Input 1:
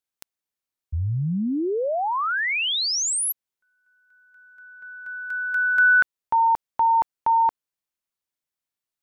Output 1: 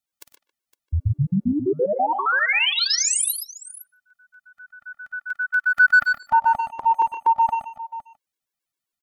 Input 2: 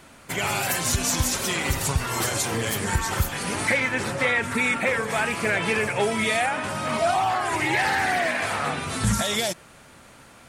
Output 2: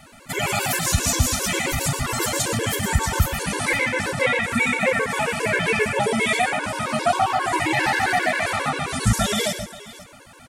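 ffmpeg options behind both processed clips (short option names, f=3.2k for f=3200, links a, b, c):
-filter_complex "[0:a]asplit=2[a][b];[b]adelay=150,highpass=300,lowpass=3.4k,asoftclip=type=hard:threshold=-19.5dB,volume=-13dB[c];[a][c]amix=inputs=2:normalize=0,acontrast=25,asplit=2[d][e];[e]aecho=0:1:53|99|121|511:0.211|0.106|0.355|0.141[f];[d][f]amix=inputs=2:normalize=0,afftfilt=real='re*gt(sin(2*PI*7.5*pts/sr)*(1-2*mod(floor(b*sr/1024/290),2)),0)':imag='im*gt(sin(2*PI*7.5*pts/sr)*(1-2*mod(floor(b*sr/1024/290),2)),0)':win_size=1024:overlap=0.75"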